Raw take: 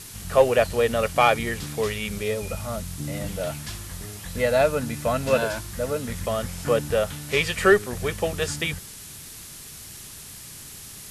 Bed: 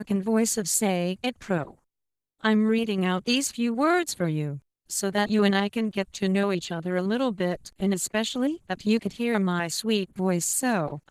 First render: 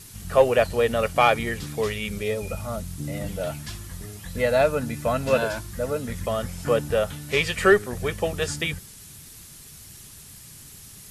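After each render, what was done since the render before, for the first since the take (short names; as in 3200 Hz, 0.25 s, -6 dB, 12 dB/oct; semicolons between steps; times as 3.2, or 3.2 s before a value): denoiser 6 dB, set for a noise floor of -42 dBFS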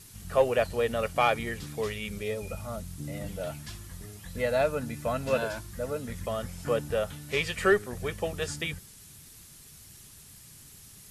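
gain -6 dB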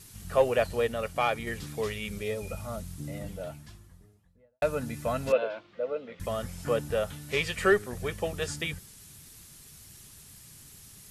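0.87–1.47 gain -3 dB; 2.78–4.62 studio fade out; 5.32–6.2 speaker cabinet 390–3200 Hz, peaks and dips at 510 Hz +6 dB, 940 Hz -6 dB, 1700 Hz -9 dB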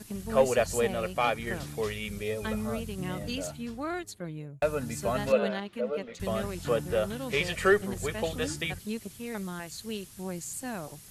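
add bed -12 dB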